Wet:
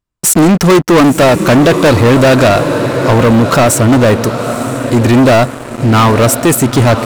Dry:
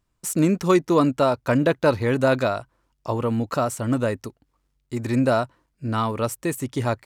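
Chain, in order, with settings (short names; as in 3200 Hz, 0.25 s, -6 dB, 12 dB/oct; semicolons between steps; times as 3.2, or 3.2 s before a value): on a send: diffused feedback echo 0.917 s, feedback 51%, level -15 dB; on the sum: sample leveller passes 5; gain +3.5 dB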